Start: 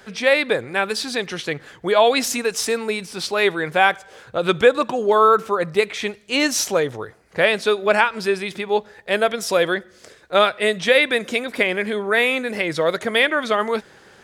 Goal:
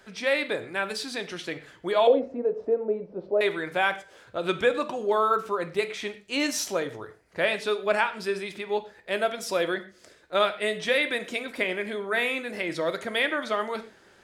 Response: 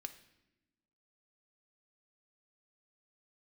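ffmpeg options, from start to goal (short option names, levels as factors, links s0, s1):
-filter_complex "[0:a]asettb=1/sr,asplit=3[s0][s1][s2];[s0]atrim=end=2.074[s3];[s1]atrim=start=2.07:end=3.41,asetpts=PTS-STARTPTS,afade=t=in:d=0.004:c=qsin,afade=t=out:st=1.336:d=0.004:c=qsin,lowpass=f=540:t=q:w=4.9[s4];[s2]atrim=start=3.406[s5];[s3][s4]acrossfade=d=0.004:c1=hsin:c2=qsin[s6];[s6][s5]acrossfade=d=0.004:c1=qsin:c2=hsin[s7];[1:a]atrim=start_sample=2205,atrim=end_sample=6615,asetrate=48510,aresample=44100[s8];[s7][s8]afir=irnorm=-1:irlink=0,volume=0.708"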